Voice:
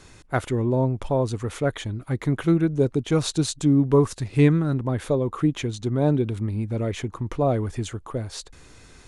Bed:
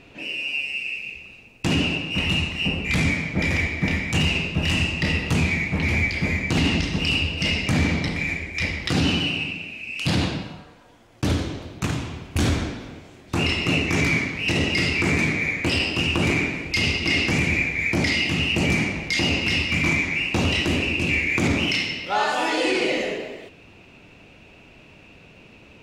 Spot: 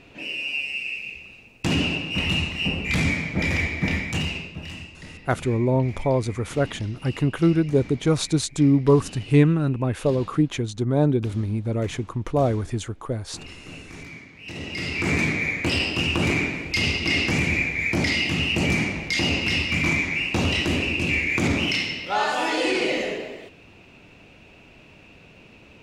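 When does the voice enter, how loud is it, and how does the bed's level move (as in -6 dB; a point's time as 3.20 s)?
4.95 s, +1.0 dB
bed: 3.99 s -1 dB
4.97 s -19.5 dB
14.26 s -19.5 dB
15.13 s -1 dB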